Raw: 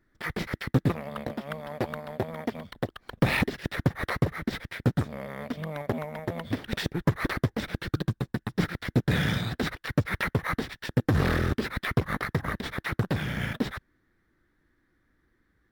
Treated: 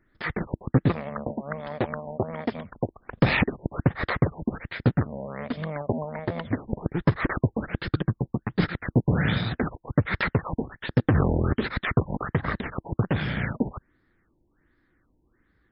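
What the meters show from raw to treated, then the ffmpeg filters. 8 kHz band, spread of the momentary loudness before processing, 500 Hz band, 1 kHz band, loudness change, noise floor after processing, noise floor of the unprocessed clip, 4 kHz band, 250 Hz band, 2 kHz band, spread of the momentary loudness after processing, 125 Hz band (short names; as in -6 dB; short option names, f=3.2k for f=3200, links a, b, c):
under -30 dB, 10 LU, +3.0 dB, +2.5 dB, +2.5 dB, -70 dBFS, -72 dBFS, -1.5 dB, +3.0 dB, +1.0 dB, 10 LU, +3.0 dB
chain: -af "afftfilt=real='re*lt(b*sr/1024,960*pow(5400/960,0.5+0.5*sin(2*PI*1.3*pts/sr)))':imag='im*lt(b*sr/1024,960*pow(5400/960,0.5+0.5*sin(2*PI*1.3*pts/sr)))':win_size=1024:overlap=0.75,volume=3dB"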